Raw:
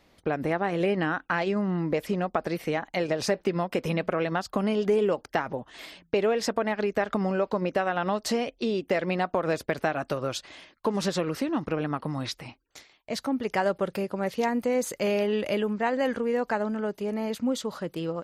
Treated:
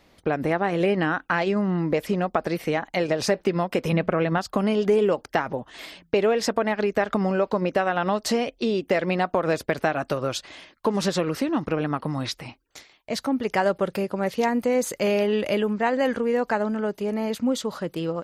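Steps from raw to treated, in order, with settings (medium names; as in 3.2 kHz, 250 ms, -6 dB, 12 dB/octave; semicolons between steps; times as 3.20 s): 3.92–4.38 s: tone controls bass +5 dB, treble -9 dB; trim +3.5 dB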